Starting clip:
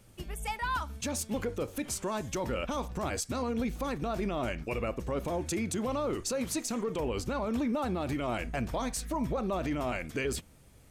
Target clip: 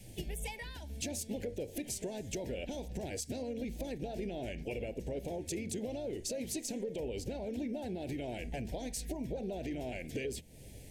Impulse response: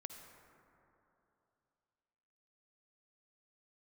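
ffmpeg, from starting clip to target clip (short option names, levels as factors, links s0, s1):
-filter_complex "[0:a]adynamicequalizer=threshold=0.00447:dfrequency=430:dqfactor=3.8:tfrequency=430:tqfactor=3.8:attack=5:release=100:ratio=0.375:range=2:mode=boostabove:tftype=bell,asplit=2[s0][s1];[s1]asetrate=52444,aresample=44100,atempo=0.840896,volume=0.251[s2];[s0][s2]amix=inputs=2:normalize=0,acompressor=threshold=0.00631:ratio=5,asuperstop=centerf=1200:order=4:qfactor=0.99,bandreject=f=75.81:t=h:w=4,bandreject=f=151.62:t=h:w=4,bandreject=f=227.43:t=h:w=4,volume=2.24"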